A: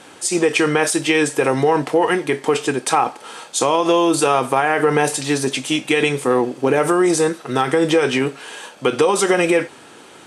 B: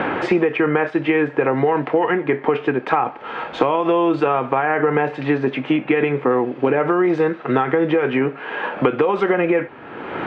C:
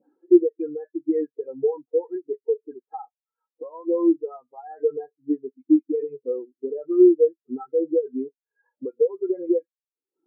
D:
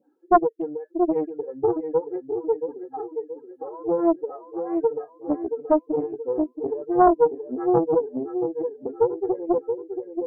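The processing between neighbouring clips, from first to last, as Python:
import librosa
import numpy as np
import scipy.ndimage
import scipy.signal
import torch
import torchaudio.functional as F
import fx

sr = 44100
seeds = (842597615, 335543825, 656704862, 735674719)

y1 = scipy.signal.sosfilt(scipy.signal.butter(4, 2300.0, 'lowpass', fs=sr, output='sos'), x)
y1 = fx.band_squash(y1, sr, depth_pct=100)
y1 = y1 * 10.0 ** (-1.5 / 20.0)
y2 = fx.dispersion(y1, sr, late='highs', ms=83.0, hz=2300.0)
y2 = fx.spectral_expand(y2, sr, expansion=4.0)
y3 = fx.echo_feedback(y2, sr, ms=677, feedback_pct=47, wet_db=-7)
y3 = fx.doppler_dist(y3, sr, depth_ms=0.89)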